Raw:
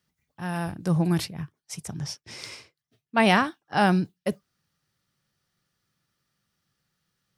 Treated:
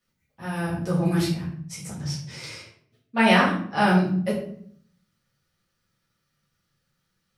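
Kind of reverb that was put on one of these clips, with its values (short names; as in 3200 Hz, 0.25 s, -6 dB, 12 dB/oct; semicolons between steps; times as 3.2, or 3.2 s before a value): shoebox room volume 80 m³, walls mixed, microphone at 1.9 m; gain -6.5 dB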